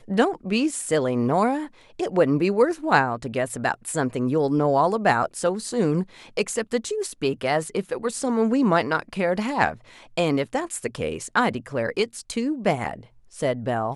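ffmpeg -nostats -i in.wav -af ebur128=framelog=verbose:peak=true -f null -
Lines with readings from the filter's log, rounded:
Integrated loudness:
  I:         -23.9 LUFS
  Threshold: -34.0 LUFS
Loudness range:
  LRA:         3.5 LU
  Threshold: -43.9 LUFS
  LRA low:   -25.8 LUFS
  LRA high:  -22.3 LUFS
True peak:
  Peak:       -4.5 dBFS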